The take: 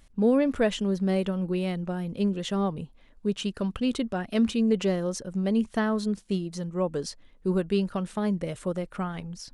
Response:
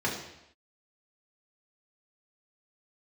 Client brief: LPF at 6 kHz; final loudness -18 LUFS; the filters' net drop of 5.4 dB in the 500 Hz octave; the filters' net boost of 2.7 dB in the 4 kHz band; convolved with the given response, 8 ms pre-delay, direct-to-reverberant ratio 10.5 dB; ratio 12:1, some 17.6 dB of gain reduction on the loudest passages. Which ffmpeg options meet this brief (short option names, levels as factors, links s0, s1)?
-filter_complex "[0:a]lowpass=6000,equalizer=f=500:t=o:g=-7,equalizer=f=4000:t=o:g=4.5,acompressor=threshold=0.0112:ratio=12,asplit=2[s0][s1];[1:a]atrim=start_sample=2205,adelay=8[s2];[s1][s2]afir=irnorm=-1:irlink=0,volume=0.1[s3];[s0][s3]amix=inputs=2:normalize=0,volume=17.8"